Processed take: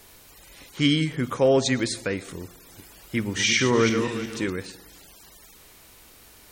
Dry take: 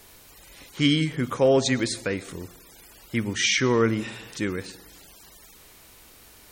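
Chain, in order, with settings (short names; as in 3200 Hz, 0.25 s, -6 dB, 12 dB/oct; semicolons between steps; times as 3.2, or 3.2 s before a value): 2.44–4.5 regenerating reverse delay 0.182 s, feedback 44%, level -6 dB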